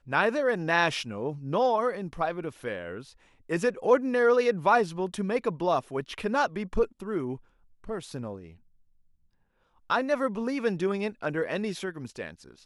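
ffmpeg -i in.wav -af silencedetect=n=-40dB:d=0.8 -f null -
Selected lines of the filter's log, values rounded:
silence_start: 8.49
silence_end: 9.90 | silence_duration: 1.41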